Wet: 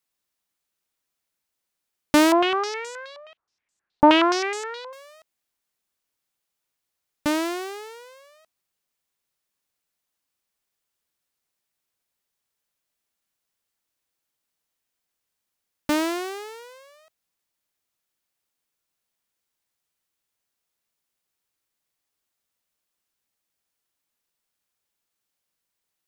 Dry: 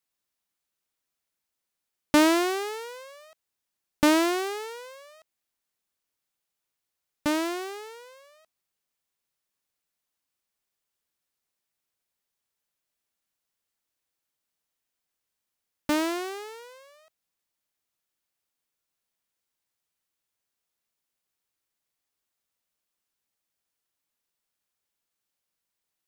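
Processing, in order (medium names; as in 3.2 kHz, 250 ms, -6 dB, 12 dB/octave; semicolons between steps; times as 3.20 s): 2.32–4.93 s: step-sequenced low-pass 9.5 Hz 890–7400 Hz; trim +2.5 dB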